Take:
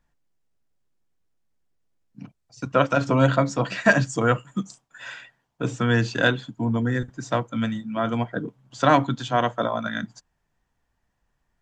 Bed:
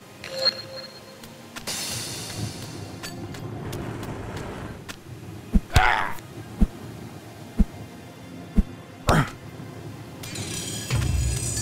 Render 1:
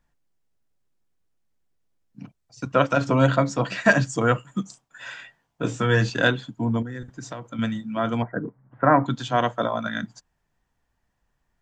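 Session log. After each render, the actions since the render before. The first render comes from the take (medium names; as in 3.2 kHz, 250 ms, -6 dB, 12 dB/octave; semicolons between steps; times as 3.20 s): 5.17–6.10 s: doubling 19 ms -4 dB; 6.82–7.59 s: compression 8:1, threshold -30 dBFS; 8.22–9.06 s: steep low-pass 2 kHz 48 dB/octave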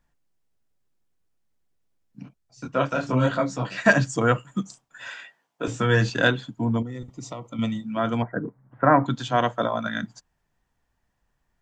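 2.23–3.76 s: detune thickener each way 43 cents -> 28 cents; 5.08–5.68 s: high-pass 290 Hz; 6.78–7.86 s: Butterworth band-stop 1.6 kHz, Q 2.6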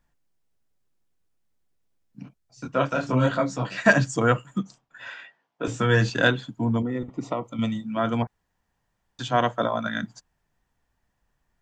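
4.58–5.65 s: distance through air 130 m; 6.83–7.44 s: FFT filter 120 Hz 0 dB, 260 Hz +9 dB, 1.3 kHz +8 dB, 2.5 kHz +5 dB, 5.8 kHz -9 dB; 8.27–9.19 s: room tone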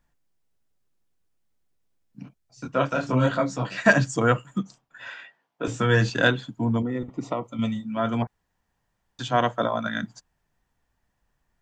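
7.47–8.22 s: comb of notches 160 Hz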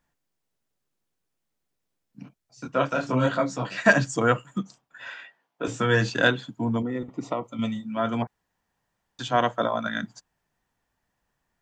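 bass shelf 88 Hz -11 dB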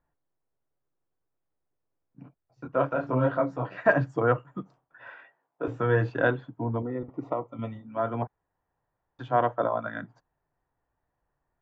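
low-pass 1.2 kHz 12 dB/octave; peaking EQ 210 Hz -14 dB 0.33 oct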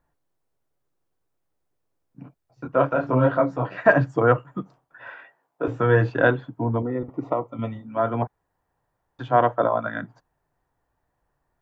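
trim +5.5 dB; peak limiter -3 dBFS, peak gain reduction 1 dB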